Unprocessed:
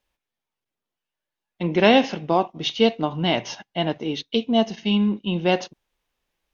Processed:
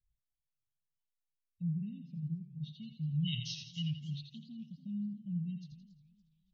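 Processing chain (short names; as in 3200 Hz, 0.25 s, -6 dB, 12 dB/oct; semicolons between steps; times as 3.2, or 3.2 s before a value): spectral gate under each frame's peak -20 dB strong; Chebyshev band-stop 150–4000 Hz, order 4; dynamic EQ 350 Hz, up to -5 dB, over -51 dBFS, Q 0.76; LFO low-pass sine 0.35 Hz 520–3000 Hz; on a send: thinning echo 84 ms, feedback 43%, high-pass 340 Hz, level -7 dB; on the sum: warbling echo 0.28 s, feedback 35%, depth 177 cents, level -17.5 dB; gain +1.5 dB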